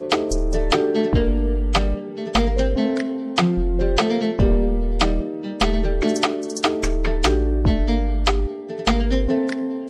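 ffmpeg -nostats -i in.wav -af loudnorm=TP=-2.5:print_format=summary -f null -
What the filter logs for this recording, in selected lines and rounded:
Input Integrated:    -21.2 LUFS
Input True Peak:      -8.1 dBTP
Input LRA:             0.5 LU
Input Threshold:     -31.2 LUFS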